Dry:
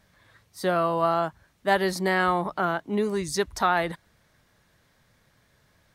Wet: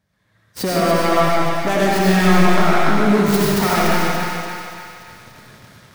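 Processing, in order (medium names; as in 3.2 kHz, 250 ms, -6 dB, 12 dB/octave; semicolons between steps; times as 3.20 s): tracing distortion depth 0.21 ms; high-pass 87 Hz 12 dB/octave; bass shelf 230 Hz +10 dB; level rider gain up to 15 dB; waveshaping leveller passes 3; compression 6:1, threshold -15 dBFS, peak gain reduction 10.5 dB; thinning echo 288 ms, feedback 53%, high-pass 570 Hz, level -4.5 dB; reverberation RT60 1.9 s, pre-delay 45 ms, DRR -5 dB; trim -5.5 dB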